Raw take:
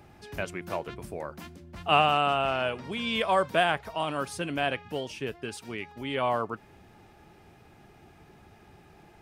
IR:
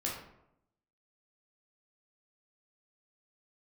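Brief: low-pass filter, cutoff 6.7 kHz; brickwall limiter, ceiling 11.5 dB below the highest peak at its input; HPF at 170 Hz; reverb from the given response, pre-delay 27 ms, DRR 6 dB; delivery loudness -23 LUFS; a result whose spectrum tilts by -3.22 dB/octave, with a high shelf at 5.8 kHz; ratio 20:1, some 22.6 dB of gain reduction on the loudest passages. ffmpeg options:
-filter_complex "[0:a]highpass=170,lowpass=6700,highshelf=f=5800:g=-8,acompressor=threshold=0.01:ratio=20,alimiter=level_in=3.98:limit=0.0631:level=0:latency=1,volume=0.251,asplit=2[s0][s1];[1:a]atrim=start_sample=2205,adelay=27[s2];[s1][s2]afir=irnorm=-1:irlink=0,volume=0.335[s3];[s0][s3]amix=inputs=2:normalize=0,volume=16.8"

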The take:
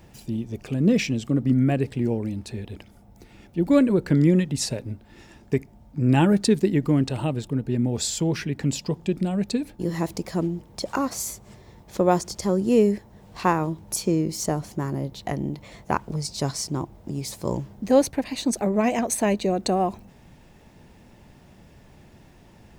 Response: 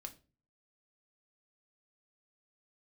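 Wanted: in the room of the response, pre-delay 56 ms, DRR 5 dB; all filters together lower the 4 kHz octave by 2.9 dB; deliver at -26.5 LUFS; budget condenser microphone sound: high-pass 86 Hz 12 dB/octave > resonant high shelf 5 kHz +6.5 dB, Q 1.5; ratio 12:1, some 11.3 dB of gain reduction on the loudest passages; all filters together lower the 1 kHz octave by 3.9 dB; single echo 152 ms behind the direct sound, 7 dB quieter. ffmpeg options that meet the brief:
-filter_complex "[0:a]equalizer=f=1000:t=o:g=-5,equalizer=f=4000:t=o:g=-6.5,acompressor=threshold=0.0562:ratio=12,aecho=1:1:152:0.447,asplit=2[s0][s1];[1:a]atrim=start_sample=2205,adelay=56[s2];[s1][s2]afir=irnorm=-1:irlink=0,volume=1[s3];[s0][s3]amix=inputs=2:normalize=0,highpass=86,highshelf=f=5000:t=q:w=1.5:g=6.5,volume=1.19"

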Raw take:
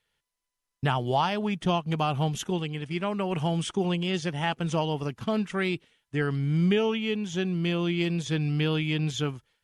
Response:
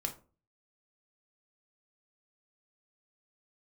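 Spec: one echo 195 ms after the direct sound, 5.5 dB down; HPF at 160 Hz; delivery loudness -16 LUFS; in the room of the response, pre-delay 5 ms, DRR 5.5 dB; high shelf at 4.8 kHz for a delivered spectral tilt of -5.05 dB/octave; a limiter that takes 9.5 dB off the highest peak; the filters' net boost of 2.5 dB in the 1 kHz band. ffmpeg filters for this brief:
-filter_complex "[0:a]highpass=160,equalizer=f=1000:t=o:g=3,highshelf=f=4800:g=5,alimiter=limit=0.112:level=0:latency=1,aecho=1:1:195:0.531,asplit=2[s0][s1];[1:a]atrim=start_sample=2205,adelay=5[s2];[s1][s2]afir=irnorm=-1:irlink=0,volume=0.473[s3];[s0][s3]amix=inputs=2:normalize=0,volume=3.55"

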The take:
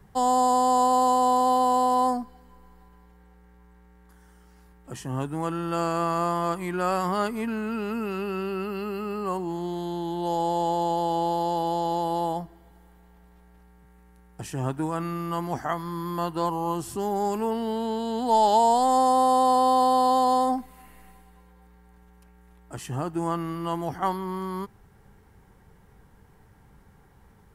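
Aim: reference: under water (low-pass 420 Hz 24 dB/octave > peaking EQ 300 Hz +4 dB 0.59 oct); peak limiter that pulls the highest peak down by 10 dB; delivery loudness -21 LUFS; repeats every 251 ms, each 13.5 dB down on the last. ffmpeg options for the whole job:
-af "alimiter=limit=0.1:level=0:latency=1,lowpass=f=420:w=0.5412,lowpass=f=420:w=1.3066,equalizer=f=300:t=o:w=0.59:g=4,aecho=1:1:251|502:0.211|0.0444,volume=3.98"

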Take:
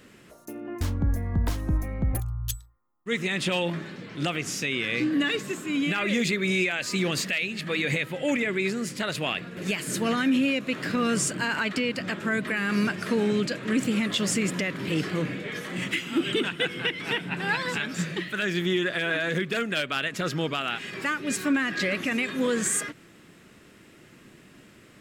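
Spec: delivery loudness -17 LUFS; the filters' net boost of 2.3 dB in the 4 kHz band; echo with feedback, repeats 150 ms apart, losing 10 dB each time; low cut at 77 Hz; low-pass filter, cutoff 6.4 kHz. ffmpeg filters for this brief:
-af "highpass=77,lowpass=6400,equalizer=f=4000:t=o:g=3.5,aecho=1:1:150|300|450|600:0.316|0.101|0.0324|0.0104,volume=2.82"

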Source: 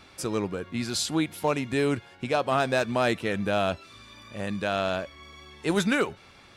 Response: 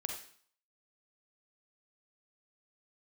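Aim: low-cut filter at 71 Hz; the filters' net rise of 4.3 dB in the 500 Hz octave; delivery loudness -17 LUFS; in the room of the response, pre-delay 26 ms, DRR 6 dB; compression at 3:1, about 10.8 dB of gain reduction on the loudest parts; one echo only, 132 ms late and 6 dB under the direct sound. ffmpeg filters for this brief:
-filter_complex "[0:a]highpass=71,equalizer=f=500:t=o:g=5.5,acompressor=threshold=0.0251:ratio=3,aecho=1:1:132:0.501,asplit=2[s0][s1];[1:a]atrim=start_sample=2205,adelay=26[s2];[s1][s2]afir=irnorm=-1:irlink=0,volume=0.473[s3];[s0][s3]amix=inputs=2:normalize=0,volume=5.96"

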